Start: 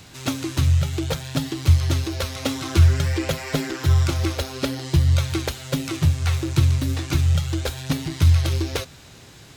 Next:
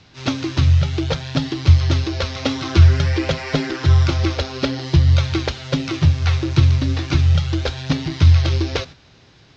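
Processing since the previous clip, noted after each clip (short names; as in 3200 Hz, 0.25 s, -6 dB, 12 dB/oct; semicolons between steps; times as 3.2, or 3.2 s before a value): gate -38 dBFS, range -8 dB; steep low-pass 5700 Hz 36 dB/oct; gain +4 dB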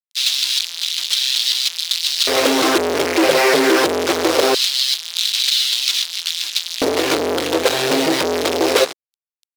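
fuzz box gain 37 dB, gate -39 dBFS; LFO high-pass square 0.22 Hz 420–3700 Hz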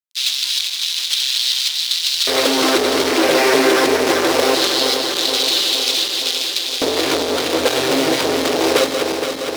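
regenerating reverse delay 0.234 s, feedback 80%, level -6 dB; gain -1.5 dB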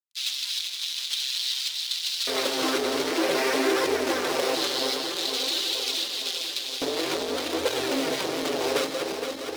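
flange 0.52 Hz, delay 1.9 ms, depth 6 ms, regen -30%; gain -6.5 dB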